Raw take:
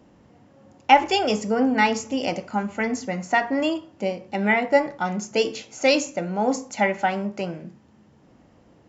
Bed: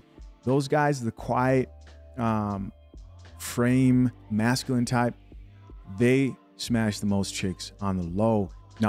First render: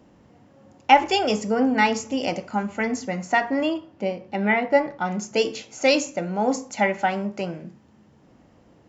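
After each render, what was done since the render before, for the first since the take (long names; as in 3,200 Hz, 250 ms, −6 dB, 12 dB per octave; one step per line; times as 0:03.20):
0:03.62–0:05.11: high-frequency loss of the air 110 metres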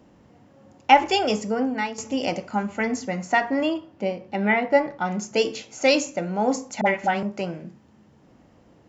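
0:01.08–0:01.98: fade out equal-power, to −14 dB
0:06.81–0:07.23: all-pass dispersion highs, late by 50 ms, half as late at 570 Hz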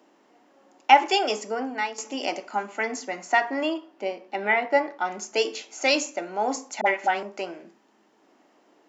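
high-pass filter 320 Hz 24 dB per octave
parametric band 510 Hz −9 dB 0.23 octaves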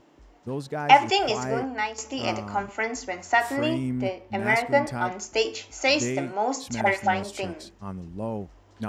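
mix in bed −8 dB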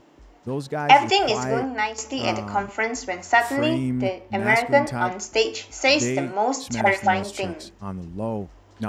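level +3.5 dB
brickwall limiter −1 dBFS, peak gain reduction 3 dB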